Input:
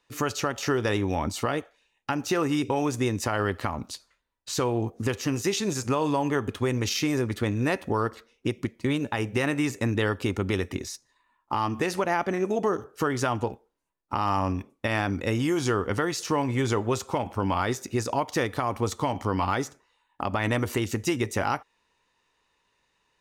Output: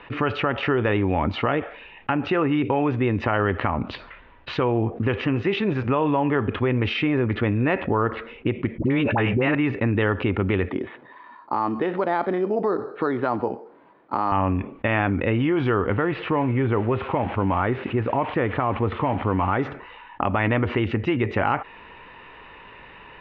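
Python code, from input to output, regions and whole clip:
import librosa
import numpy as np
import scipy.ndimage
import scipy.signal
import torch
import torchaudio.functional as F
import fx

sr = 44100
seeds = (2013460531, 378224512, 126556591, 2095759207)

y = fx.chain(x, sr, fx.dispersion(late='highs', ms=64.0, hz=760.0),
    fx.env_flatten(amount_pct=70), at=(8.78, 9.55))
y = fx.chain(y, sr, fx.highpass(hz=240.0, slope=12),
    fx.spacing_loss(db_at_10k=32),
    fx.resample_bad(factor=8, down='filtered', up='hold'), at=(10.69, 14.32))
y = fx.chain(y, sr, fx.crossing_spikes(level_db=-23.0),
    fx.air_absorb(metres=420.0), at=(15.9, 19.59))
y = scipy.signal.sosfilt(scipy.signal.butter(6, 2900.0, 'lowpass', fs=sr, output='sos'), y)
y = fx.env_flatten(y, sr, amount_pct=50)
y = F.gain(torch.from_numpy(y), 2.5).numpy()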